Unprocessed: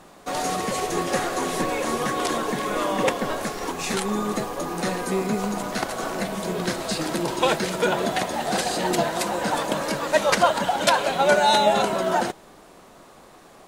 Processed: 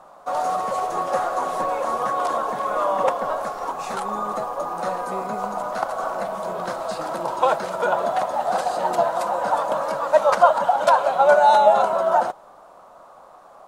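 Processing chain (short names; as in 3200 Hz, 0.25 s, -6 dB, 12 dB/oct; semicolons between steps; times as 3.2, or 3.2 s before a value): band shelf 860 Hz +15 dB; gain -10 dB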